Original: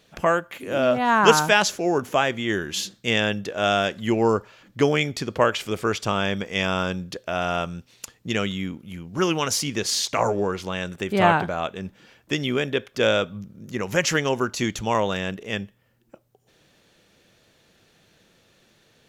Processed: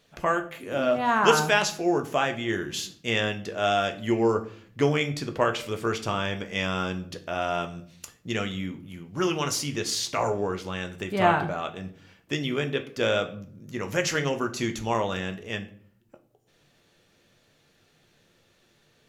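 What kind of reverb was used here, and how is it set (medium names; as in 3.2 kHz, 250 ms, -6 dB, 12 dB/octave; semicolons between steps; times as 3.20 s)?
simulated room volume 52 m³, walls mixed, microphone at 0.31 m; trim -5 dB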